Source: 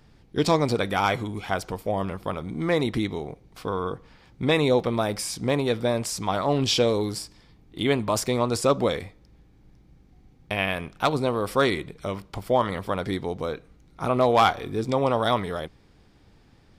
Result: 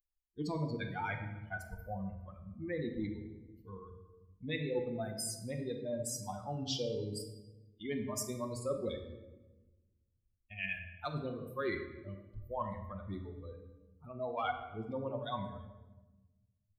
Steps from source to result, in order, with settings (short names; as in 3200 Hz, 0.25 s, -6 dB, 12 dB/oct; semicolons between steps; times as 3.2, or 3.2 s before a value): per-bin expansion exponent 3; reverse; compressor 4:1, threshold -39 dBFS, peak gain reduction 17.5 dB; reverse; shoebox room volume 660 m³, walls mixed, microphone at 0.95 m; gain +1.5 dB